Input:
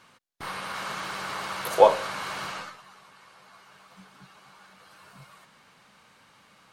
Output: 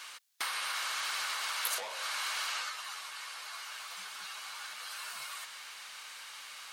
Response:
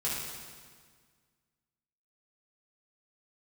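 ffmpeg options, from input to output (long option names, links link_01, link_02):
-filter_complex "[0:a]asplit=2[link_01][link_02];[link_02]highpass=frequency=720:poles=1,volume=23dB,asoftclip=type=tanh:threshold=-2dB[link_03];[link_01][link_03]amix=inputs=2:normalize=0,lowpass=frequency=3200:poles=1,volume=-6dB,acompressor=threshold=-27dB:ratio=20,aderivative,volume=6.5dB"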